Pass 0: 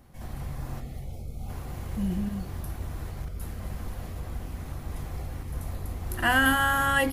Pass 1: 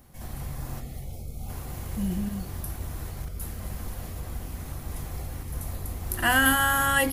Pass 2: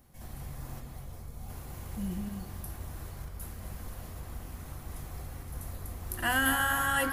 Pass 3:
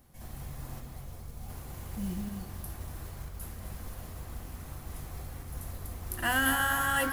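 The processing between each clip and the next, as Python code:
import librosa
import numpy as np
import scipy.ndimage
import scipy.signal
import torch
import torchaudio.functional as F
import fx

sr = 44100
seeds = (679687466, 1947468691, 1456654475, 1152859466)

y1 = fx.high_shelf(x, sr, hz=5700.0, db=10.0)
y2 = fx.echo_banded(y1, sr, ms=237, feedback_pct=83, hz=1200.0, wet_db=-6.0)
y2 = F.gain(torch.from_numpy(y2), -6.5).numpy()
y3 = fx.mod_noise(y2, sr, seeds[0], snr_db=21)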